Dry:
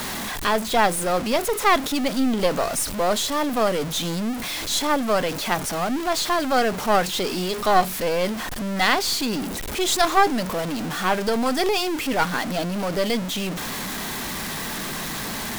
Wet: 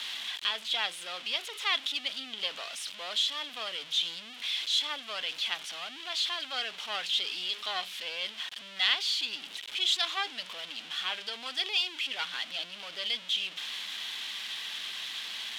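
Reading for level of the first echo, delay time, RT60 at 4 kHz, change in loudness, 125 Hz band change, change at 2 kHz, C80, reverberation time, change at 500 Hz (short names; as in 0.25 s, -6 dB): none, none, none, -8.5 dB, under -30 dB, -8.5 dB, none, none, -24.0 dB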